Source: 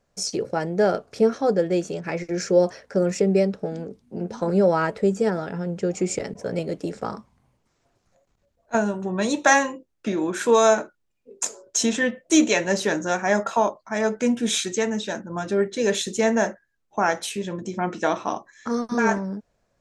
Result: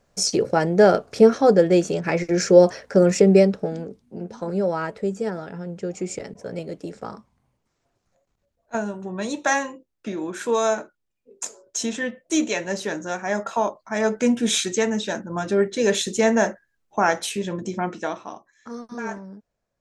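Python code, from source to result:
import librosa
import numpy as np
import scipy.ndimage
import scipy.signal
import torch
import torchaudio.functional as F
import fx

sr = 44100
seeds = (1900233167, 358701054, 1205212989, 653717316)

y = fx.gain(x, sr, db=fx.line((3.37, 5.5), (4.32, -4.5), (13.25, -4.5), (14.15, 2.0), (17.72, 2.0), (18.31, -10.0)))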